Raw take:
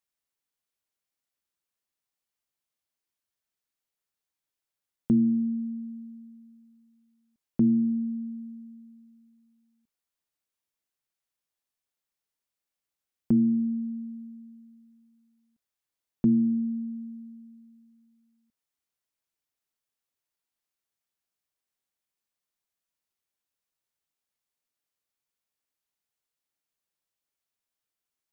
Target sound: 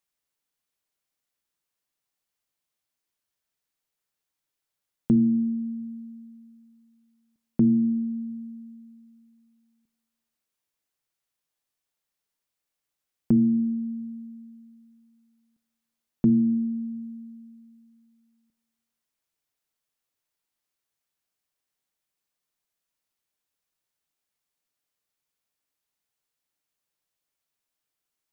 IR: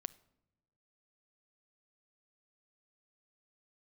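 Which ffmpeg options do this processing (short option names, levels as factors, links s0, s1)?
-filter_complex "[1:a]atrim=start_sample=2205[s0];[0:a][s0]afir=irnorm=-1:irlink=0,volume=2"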